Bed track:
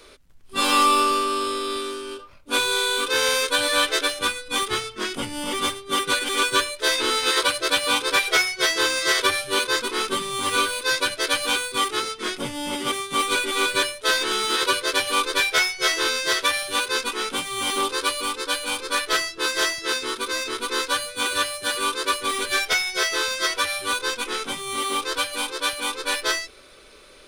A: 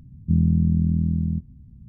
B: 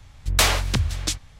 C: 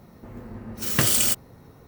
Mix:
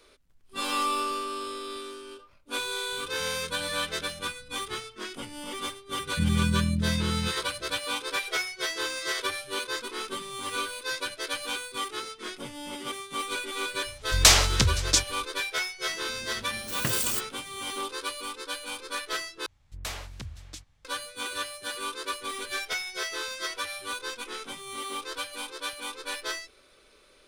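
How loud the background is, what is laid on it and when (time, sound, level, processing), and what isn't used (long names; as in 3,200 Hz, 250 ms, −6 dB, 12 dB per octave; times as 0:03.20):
bed track −10 dB
0:02.92: mix in A −11 dB + downward compressor 3 to 1, threshold −39 dBFS
0:05.89: mix in A −7 dB + double-tracking delay 34 ms −6 dB
0:13.86: mix in B −2 dB + parametric band 5,900 Hz +8 dB 1.4 octaves
0:15.86: mix in C −8 dB
0:19.46: overwrite with B −18 dB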